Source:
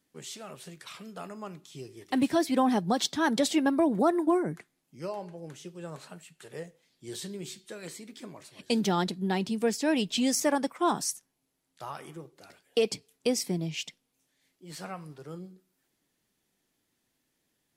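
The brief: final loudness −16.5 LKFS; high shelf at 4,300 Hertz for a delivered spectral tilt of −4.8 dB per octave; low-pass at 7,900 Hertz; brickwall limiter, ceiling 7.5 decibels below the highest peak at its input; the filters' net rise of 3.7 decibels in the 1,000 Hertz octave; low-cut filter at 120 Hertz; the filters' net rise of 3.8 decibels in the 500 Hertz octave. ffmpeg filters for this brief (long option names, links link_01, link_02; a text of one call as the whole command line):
ffmpeg -i in.wav -af "highpass=120,lowpass=7900,equalizer=frequency=500:width_type=o:gain=4,equalizer=frequency=1000:width_type=o:gain=3.5,highshelf=frequency=4300:gain=-4.5,volume=14.5dB,alimiter=limit=-3dB:level=0:latency=1" out.wav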